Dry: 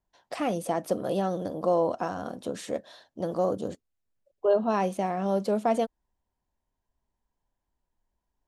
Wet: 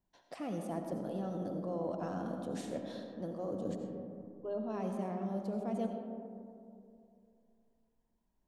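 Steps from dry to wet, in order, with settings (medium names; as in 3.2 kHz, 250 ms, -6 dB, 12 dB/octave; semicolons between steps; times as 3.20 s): peaking EQ 210 Hz +8.5 dB 1.6 oct; reverse; compression 6:1, threshold -33 dBFS, peak gain reduction 16 dB; reverse; reverberation RT60 2.6 s, pre-delay 45 ms, DRR 3.5 dB; trim -4 dB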